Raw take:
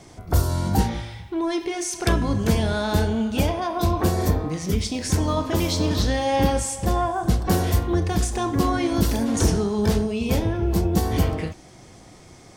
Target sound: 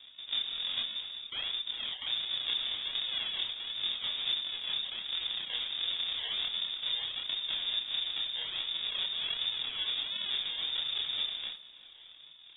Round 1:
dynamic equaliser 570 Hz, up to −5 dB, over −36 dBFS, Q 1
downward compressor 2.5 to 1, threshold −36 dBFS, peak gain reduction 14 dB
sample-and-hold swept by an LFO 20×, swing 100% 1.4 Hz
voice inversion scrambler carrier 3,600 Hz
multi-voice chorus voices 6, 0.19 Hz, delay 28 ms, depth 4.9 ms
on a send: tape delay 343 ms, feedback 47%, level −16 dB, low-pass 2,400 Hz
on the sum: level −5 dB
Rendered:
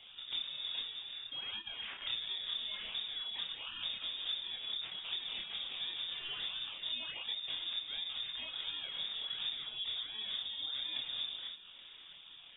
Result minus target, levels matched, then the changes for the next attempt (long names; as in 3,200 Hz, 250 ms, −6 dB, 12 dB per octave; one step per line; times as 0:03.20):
sample-and-hold swept by an LFO: distortion −9 dB; downward compressor: peak gain reduction +5.5 dB
change: downward compressor 2.5 to 1, threshold −26.5 dBFS, peak gain reduction 8.5 dB
change: sample-and-hold swept by an LFO 75×, swing 100% 1.4 Hz